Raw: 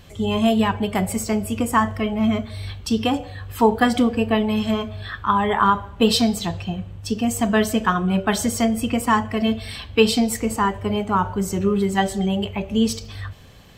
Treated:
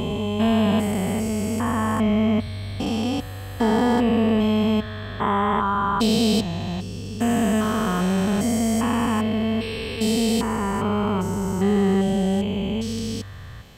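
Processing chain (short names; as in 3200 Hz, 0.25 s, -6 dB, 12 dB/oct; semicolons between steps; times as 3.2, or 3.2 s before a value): stepped spectrum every 0.4 s; gain +2.5 dB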